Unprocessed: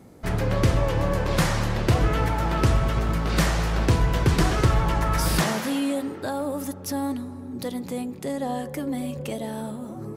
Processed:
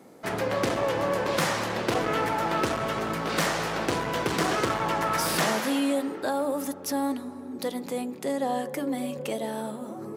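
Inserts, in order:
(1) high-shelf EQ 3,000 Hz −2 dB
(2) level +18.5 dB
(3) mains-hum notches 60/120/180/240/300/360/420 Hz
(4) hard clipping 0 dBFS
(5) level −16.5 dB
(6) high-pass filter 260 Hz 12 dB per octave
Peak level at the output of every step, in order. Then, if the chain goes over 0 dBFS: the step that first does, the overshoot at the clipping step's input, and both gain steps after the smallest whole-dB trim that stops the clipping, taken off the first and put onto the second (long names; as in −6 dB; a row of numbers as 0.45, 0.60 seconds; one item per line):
−11.0, +7.5, +8.5, 0.0, −16.5, −11.0 dBFS
step 2, 8.5 dB
step 2 +9.5 dB, step 5 −7.5 dB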